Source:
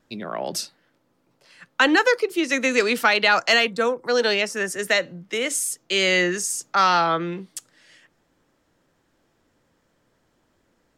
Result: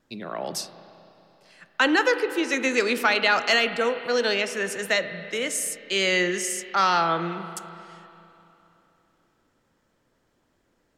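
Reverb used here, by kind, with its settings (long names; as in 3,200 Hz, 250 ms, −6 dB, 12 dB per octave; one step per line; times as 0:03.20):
spring reverb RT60 3.1 s, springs 30/41 ms, chirp 20 ms, DRR 10 dB
level −3 dB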